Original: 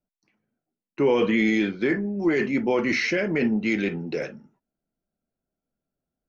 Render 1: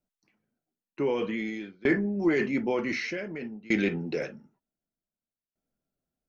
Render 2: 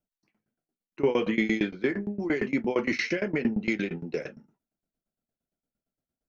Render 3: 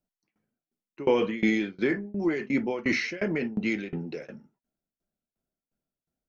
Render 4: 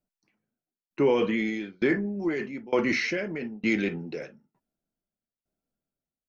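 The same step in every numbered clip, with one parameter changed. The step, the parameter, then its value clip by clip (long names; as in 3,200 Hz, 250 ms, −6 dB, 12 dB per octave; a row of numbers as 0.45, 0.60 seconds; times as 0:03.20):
shaped tremolo, speed: 0.54, 8.7, 2.8, 1.1 Hertz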